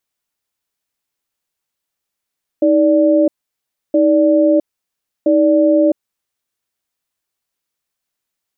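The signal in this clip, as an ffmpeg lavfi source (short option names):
-f lavfi -i "aevalsrc='0.266*(sin(2*PI*315*t)+sin(2*PI*585*t))*clip(min(mod(t,1.32),0.66-mod(t,1.32))/0.005,0,1)':d=3.9:s=44100"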